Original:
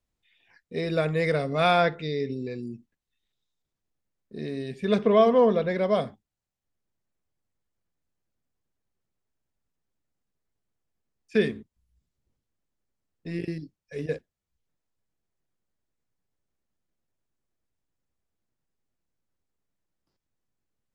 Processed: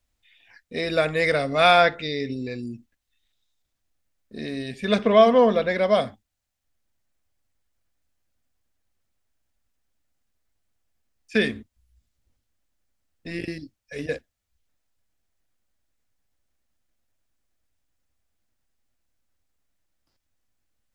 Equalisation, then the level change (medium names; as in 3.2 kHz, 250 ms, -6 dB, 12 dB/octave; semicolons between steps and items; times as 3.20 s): fifteen-band graphic EQ 160 Hz -12 dB, 400 Hz -9 dB, 1 kHz -4 dB; +8.0 dB